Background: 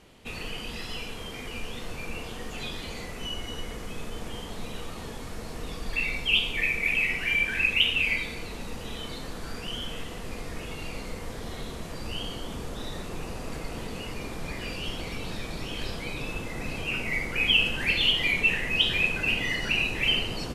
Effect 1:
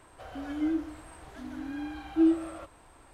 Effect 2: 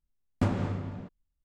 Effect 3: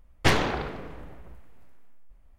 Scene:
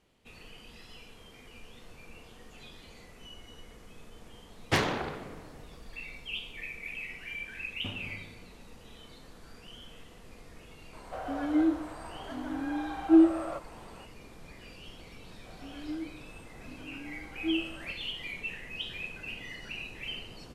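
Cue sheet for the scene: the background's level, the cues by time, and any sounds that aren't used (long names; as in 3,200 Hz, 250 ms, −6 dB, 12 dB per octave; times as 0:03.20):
background −14.5 dB
0:04.47: mix in 3 −4.5 dB + high-pass filter 91 Hz
0:07.43: mix in 2 −15 dB + one half of a high-frequency compander decoder only
0:10.93: mix in 1 −3 dB + parametric band 730 Hz +11 dB 2.8 octaves
0:15.27: mix in 1 −8.5 dB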